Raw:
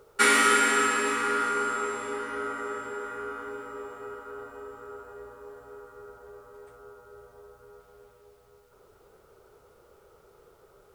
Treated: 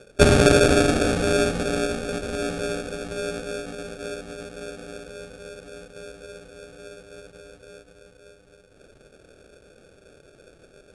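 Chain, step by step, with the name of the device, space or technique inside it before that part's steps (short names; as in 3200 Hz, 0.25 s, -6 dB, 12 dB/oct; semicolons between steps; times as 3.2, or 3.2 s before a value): crushed at another speed (playback speed 2×; sample-and-hold 22×; playback speed 0.5×); gain +5.5 dB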